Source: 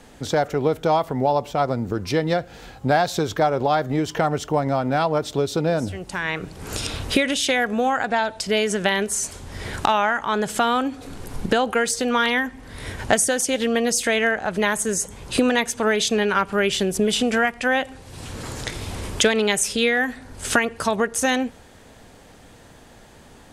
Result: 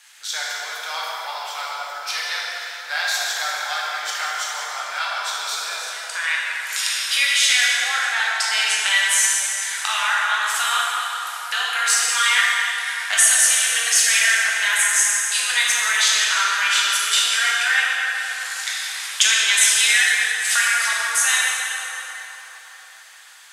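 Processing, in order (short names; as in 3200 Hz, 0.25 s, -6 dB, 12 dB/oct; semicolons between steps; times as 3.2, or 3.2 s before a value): Bessel high-pass 2000 Hz, order 4; plate-style reverb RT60 4.1 s, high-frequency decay 0.6×, pre-delay 0 ms, DRR -6.5 dB; gain +3.5 dB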